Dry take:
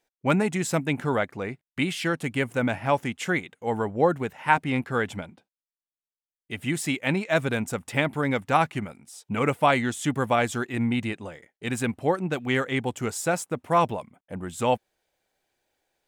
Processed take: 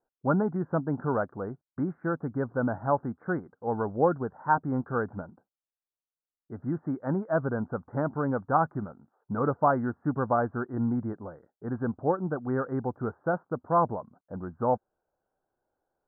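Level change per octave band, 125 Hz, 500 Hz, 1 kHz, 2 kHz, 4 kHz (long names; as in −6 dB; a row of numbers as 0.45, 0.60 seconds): −2.5 dB, −2.5 dB, −2.5 dB, −10.5 dB, below −40 dB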